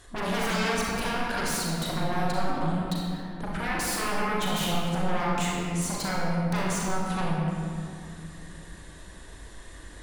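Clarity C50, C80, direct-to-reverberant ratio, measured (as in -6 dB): -2.0 dB, 0.0 dB, -5.0 dB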